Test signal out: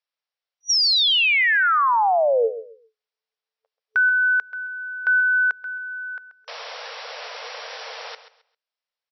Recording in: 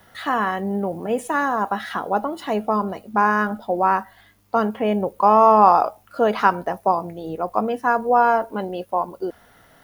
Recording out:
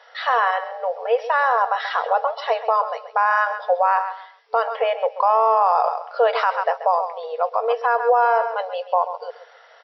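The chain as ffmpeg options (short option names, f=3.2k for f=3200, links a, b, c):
-af "aecho=1:1:133|266|399:0.224|0.0537|0.0129,afftfilt=real='re*between(b*sr/4096,440,5800)':imag='im*between(b*sr/4096,440,5800)':win_size=4096:overlap=0.75,alimiter=limit=-12.5dB:level=0:latency=1:release=59,volume=4.5dB"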